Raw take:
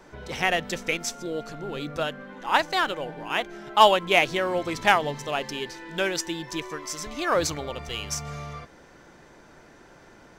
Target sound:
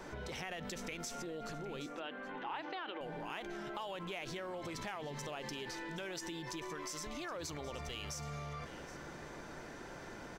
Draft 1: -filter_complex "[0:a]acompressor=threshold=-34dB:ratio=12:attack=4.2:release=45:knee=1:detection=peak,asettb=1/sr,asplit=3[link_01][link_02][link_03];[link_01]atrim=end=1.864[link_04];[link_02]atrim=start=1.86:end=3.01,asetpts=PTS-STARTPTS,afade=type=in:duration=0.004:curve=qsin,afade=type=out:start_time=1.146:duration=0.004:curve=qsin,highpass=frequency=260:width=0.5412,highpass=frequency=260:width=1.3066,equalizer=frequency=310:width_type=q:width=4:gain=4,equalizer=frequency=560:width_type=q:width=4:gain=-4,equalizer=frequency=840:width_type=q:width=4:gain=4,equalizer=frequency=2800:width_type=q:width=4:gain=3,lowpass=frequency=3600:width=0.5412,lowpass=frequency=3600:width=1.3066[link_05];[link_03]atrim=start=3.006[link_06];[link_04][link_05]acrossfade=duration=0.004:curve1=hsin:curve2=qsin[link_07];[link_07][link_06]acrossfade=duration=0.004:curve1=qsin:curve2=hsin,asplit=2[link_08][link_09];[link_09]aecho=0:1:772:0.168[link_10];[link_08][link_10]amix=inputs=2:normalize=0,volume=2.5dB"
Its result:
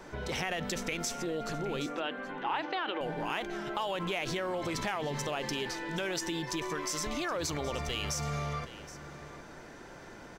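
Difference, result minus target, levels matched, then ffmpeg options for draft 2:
downward compressor: peak gain reduction −9 dB
-filter_complex "[0:a]acompressor=threshold=-44dB:ratio=12:attack=4.2:release=45:knee=1:detection=peak,asettb=1/sr,asplit=3[link_01][link_02][link_03];[link_01]atrim=end=1.864[link_04];[link_02]atrim=start=1.86:end=3.01,asetpts=PTS-STARTPTS,afade=type=in:duration=0.004:curve=qsin,afade=type=out:start_time=1.146:duration=0.004:curve=qsin,highpass=frequency=260:width=0.5412,highpass=frequency=260:width=1.3066,equalizer=frequency=310:width_type=q:width=4:gain=4,equalizer=frequency=560:width_type=q:width=4:gain=-4,equalizer=frequency=840:width_type=q:width=4:gain=4,equalizer=frequency=2800:width_type=q:width=4:gain=3,lowpass=frequency=3600:width=0.5412,lowpass=frequency=3600:width=1.3066[link_05];[link_03]atrim=start=3.006[link_06];[link_04][link_05]acrossfade=duration=0.004:curve1=hsin:curve2=qsin[link_07];[link_07][link_06]acrossfade=duration=0.004:curve1=qsin:curve2=hsin,asplit=2[link_08][link_09];[link_09]aecho=0:1:772:0.168[link_10];[link_08][link_10]amix=inputs=2:normalize=0,volume=2.5dB"

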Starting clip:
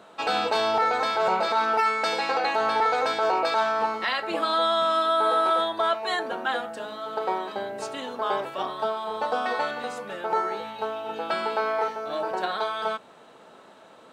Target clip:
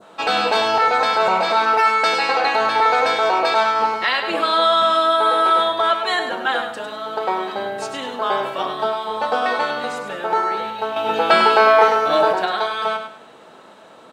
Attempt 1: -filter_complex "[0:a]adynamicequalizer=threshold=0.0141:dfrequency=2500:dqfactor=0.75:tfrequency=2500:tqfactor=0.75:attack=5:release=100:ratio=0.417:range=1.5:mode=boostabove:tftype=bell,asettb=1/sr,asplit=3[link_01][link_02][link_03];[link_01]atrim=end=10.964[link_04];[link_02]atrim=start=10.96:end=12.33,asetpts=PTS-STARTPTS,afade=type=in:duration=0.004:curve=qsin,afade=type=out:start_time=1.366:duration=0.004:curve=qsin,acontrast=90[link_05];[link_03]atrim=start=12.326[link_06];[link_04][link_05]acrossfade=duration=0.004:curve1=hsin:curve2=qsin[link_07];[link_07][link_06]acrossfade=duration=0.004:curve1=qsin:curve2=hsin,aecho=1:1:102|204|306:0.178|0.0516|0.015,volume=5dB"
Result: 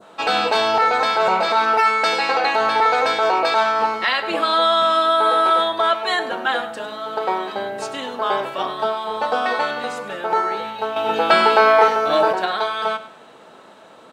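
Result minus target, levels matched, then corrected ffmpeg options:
echo-to-direct −7 dB
-filter_complex "[0:a]adynamicequalizer=threshold=0.0141:dfrequency=2500:dqfactor=0.75:tfrequency=2500:tqfactor=0.75:attack=5:release=100:ratio=0.417:range=1.5:mode=boostabove:tftype=bell,asettb=1/sr,asplit=3[link_01][link_02][link_03];[link_01]atrim=end=10.964[link_04];[link_02]atrim=start=10.96:end=12.33,asetpts=PTS-STARTPTS,afade=type=in:duration=0.004:curve=qsin,afade=type=out:start_time=1.366:duration=0.004:curve=qsin,acontrast=90[link_05];[link_03]atrim=start=12.326[link_06];[link_04][link_05]acrossfade=duration=0.004:curve1=hsin:curve2=qsin[link_07];[link_07][link_06]acrossfade=duration=0.004:curve1=qsin:curve2=hsin,aecho=1:1:102|204|306:0.398|0.115|0.0335,volume=5dB"

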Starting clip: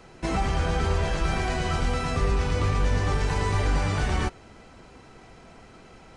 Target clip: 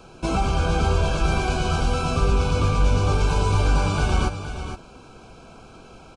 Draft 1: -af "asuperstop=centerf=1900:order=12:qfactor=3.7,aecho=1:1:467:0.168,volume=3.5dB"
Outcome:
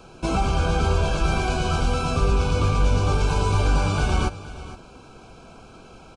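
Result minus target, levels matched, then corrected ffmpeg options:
echo-to-direct −6 dB
-af "asuperstop=centerf=1900:order=12:qfactor=3.7,aecho=1:1:467:0.335,volume=3.5dB"

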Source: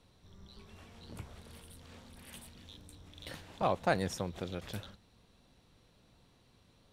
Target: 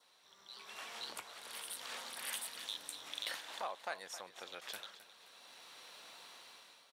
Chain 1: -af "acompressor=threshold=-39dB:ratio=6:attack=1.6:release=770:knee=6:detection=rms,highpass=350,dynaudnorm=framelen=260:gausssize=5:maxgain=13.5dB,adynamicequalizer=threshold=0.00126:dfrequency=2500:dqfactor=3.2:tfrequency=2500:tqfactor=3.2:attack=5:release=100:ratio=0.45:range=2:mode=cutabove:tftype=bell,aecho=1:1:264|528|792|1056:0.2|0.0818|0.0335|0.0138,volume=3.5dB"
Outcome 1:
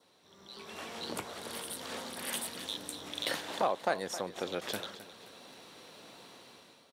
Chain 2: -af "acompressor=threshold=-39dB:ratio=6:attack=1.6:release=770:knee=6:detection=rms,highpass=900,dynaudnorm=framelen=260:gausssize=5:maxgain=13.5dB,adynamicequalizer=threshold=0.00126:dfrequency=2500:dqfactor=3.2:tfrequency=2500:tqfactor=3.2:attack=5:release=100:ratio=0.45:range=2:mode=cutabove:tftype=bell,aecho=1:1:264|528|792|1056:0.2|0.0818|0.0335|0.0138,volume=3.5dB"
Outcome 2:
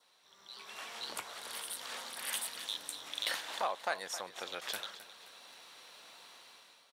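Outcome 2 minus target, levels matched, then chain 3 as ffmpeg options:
downward compressor: peak gain reduction −7 dB
-af "acompressor=threshold=-47.5dB:ratio=6:attack=1.6:release=770:knee=6:detection=rms,highpass=900,dynaudnorm=framelen=260:gausssize=5:maxgain=13.5dB,adynamicequalizer=threshold=0.00126:dfrequency=2500:dqfactor=3.2:tfrequency=2500:tqfactor=3.2:attack=5:release=100:ratio=0.45:range=2:mode=cutabove:tftype=bell,aecho=1:1:264|528|792|1056:0.2|0.0818|0.0335|0.0138,volume=3.5dB"

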